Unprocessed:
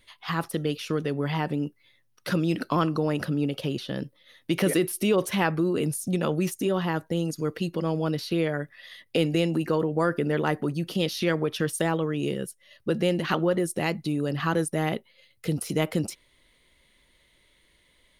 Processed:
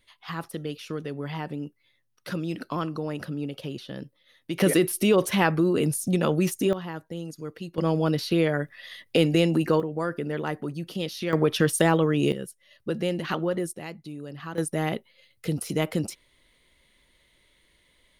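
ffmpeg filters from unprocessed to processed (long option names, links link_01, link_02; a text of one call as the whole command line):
ffmpeg -i in.wav -af "asetnsamples=nb_out_samples=441:pad=0,asendcmd='4.6 volume volume 2.5dB;6.73 volume volume -8dB;7.78 volume volume 3dB;9.8 volume volume -4.5dB;11.33 volume volume 5dB;12.32 volume volume -3dB;13.73 volume volume -11dB;14.58 volume volume -0.5dB',volume=-5.5dB" out.wav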